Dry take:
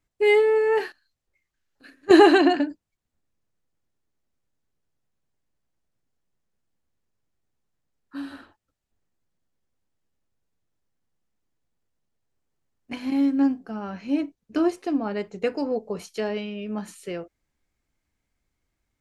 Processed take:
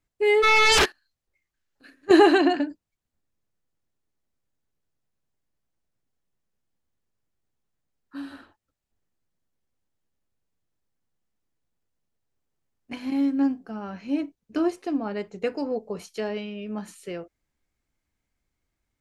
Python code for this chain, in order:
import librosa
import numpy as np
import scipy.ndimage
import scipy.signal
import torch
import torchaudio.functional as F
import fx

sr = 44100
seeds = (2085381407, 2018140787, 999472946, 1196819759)

y = fx.fold_sine(x, sr, drive_db=fx.line((0.42, 13.0), (0.84, 19.0)), ceiling_db=-12.5, at=(0.42, 0.84), fade=0.02)
y = y * librosa.db_to_amplitude(-2.0)